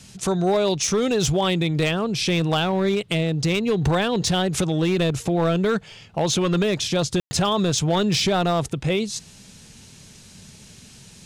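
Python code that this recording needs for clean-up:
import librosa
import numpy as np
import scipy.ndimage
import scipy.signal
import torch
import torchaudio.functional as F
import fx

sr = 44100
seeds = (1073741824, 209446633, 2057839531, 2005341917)

y = fx.fix_declip(x, sr, threshold_db=-14.5)
y = fx.fix_ambience(y, sr, seeds[0], print_start_s=9.85, print_end_s=10.35, start_s=7.2, end_s=7.31)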